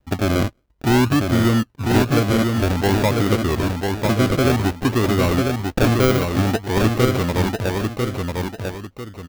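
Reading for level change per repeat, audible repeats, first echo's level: −9.5 dB, 2, −4.0 dB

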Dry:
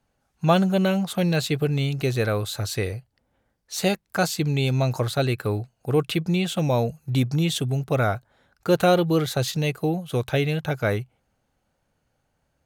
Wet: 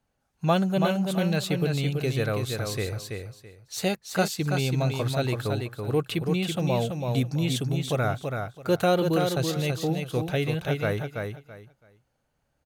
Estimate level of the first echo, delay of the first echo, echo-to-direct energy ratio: −5.0 dB, 331 ms, −5.0 dB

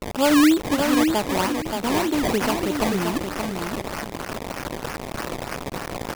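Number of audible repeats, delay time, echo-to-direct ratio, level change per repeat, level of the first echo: 2, 576 ms, −5.0 dB, −12.5 dB, −5.0 dB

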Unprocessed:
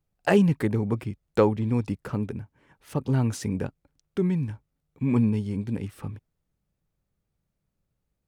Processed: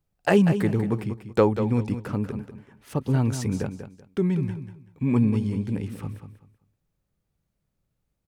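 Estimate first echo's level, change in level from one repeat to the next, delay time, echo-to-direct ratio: −10.0 dB, −12.5 dB, 191 ms, −9.5 dB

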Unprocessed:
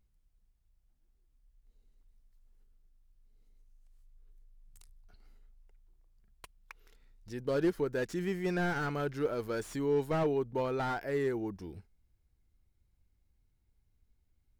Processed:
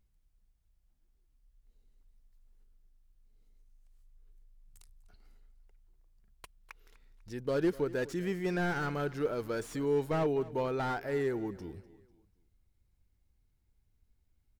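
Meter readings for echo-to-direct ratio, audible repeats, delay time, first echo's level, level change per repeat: −18.5 dB, 3, 248 ms, −19.0 dB, −8.0 dB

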